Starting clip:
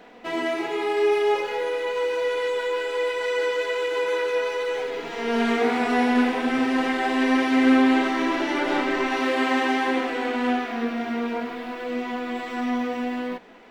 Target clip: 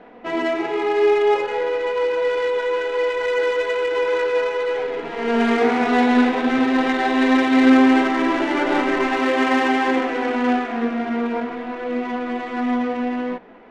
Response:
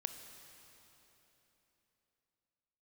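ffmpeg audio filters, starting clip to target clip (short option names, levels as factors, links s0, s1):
-filter_complex "[0:a]adynamicsmooth=sensitivity=2:basefreq=2100,asettb=1/sr,asplit=3[s0][s1][s2];[s0]atrim=end=5.864[s3];[s1]atrim=start=5.86:end=7.7,asetpts=PTS-STARTPTS,afade=t=in:d=0.004:c=qsin,afade=t=out:st=1.836:d=0.004:c=qsin,equalizer=f=3800:t=o:w=0.21:g=7[s4];[s2]atrim=start=7.696[s5];[s3][s4]acrossfade=d=0.004:c1=hsin:c2=qsin[s6];[s6][s5]acrossfade=d=0.004:c1=qsin:c2=hsin,volume=1.68"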